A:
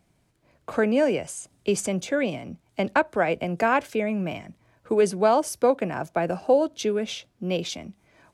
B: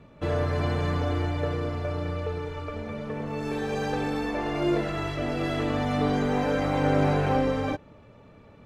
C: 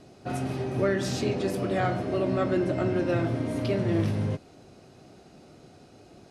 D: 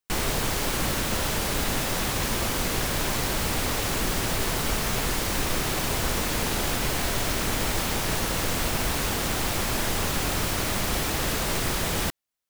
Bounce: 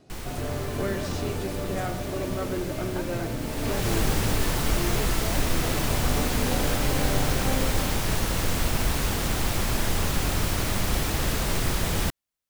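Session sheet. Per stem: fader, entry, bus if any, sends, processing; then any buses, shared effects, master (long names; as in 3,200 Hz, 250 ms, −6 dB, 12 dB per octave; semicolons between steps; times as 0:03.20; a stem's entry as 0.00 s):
−19.0 dB, 0.00 s, no send, no processing
−7.5 dB, 0.15 s, no send, no processing
−5.0 dB, 0.00 s, no send, no processing
0:03.39 −13 dB → 0:03.92 −2 dB, 0.00 s, no send, low-shelf EQ 180 Hz +7.5 dB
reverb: not used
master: no processing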